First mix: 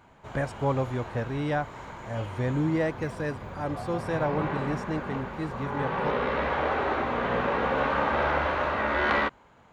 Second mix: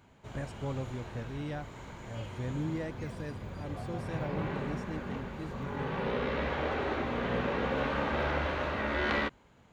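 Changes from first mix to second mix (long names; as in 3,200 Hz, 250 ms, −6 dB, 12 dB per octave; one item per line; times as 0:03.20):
speech −7.0 dB
master: add parametric band 1,000 Hz −9 dB 2.1 octaves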